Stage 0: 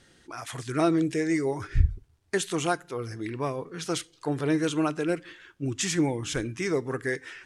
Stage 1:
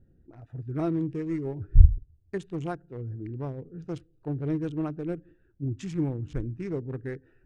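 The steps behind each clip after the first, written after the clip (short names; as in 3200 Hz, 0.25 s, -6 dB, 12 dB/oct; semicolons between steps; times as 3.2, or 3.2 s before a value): Wiener smoothing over 41 samples; RIAA curve playback; gain -9 dB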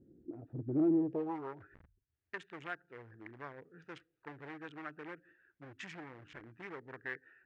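compressor 10:1, threshold -29 dBFS, peak gain reduction 22.5 dB; hard clip -31.5 dBFS, distortion -12 dB; band-pass sweep 320 Hz -> 1800 Hz, 0.91–1.63; gain +9 dB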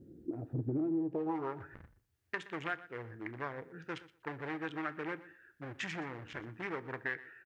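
compressor 16:1, threshold -39 dBFS, peak gain reduction 14 dB; feedback echo 0.121 s, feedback 16%, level -18 dB; on a send at -14 dB: reverb RT60 0.35 s, pre-delay 3 ms; on the sum: gain +7.5 dB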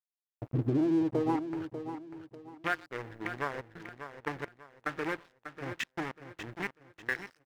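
step gate "...xxxxxxx.x..xx" 108 bpm -24 dB; crossover distortion -50.5 dBFS; feedback echo 0.593 s, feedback 32%, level -10 dB; gain +7 dB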